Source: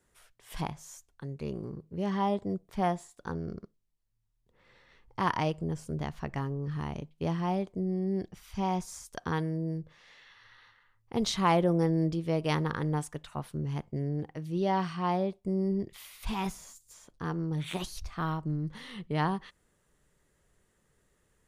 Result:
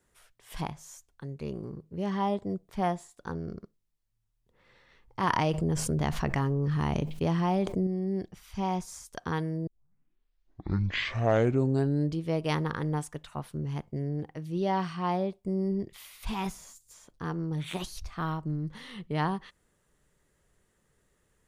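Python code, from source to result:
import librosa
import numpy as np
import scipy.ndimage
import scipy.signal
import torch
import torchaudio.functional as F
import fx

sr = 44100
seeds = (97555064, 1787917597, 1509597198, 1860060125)

y = fx.env_flatten(x, sr, amount_pct=70, at=(5.23, 7.87))
y = fx.edit(y, sr, fx.tape_start(start_s=9.67, length_s=2.56), tone=tone)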